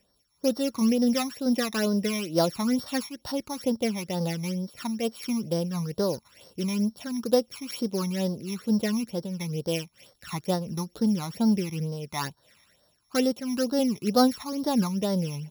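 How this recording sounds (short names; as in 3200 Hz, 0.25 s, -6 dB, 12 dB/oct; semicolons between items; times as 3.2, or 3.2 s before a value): a buzz of ramps at a fixed pitch in blocks of 8 samples; phasing stages 12, 2.2 Hz, lowest notch 490–2500 Hz; noise-modulated level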